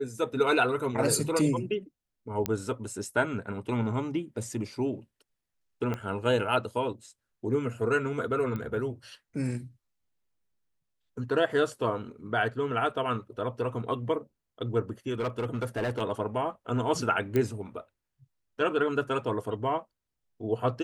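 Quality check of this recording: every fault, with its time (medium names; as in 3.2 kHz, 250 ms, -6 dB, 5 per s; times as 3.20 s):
2.46 s: pop -12 dBFS
5.94 s: pop -20 dBFS
8.56 s: pop -23 dBFS
15.19–16.02 s: clipped -25.5 dBFS
17.36 s: pop -15 dBFS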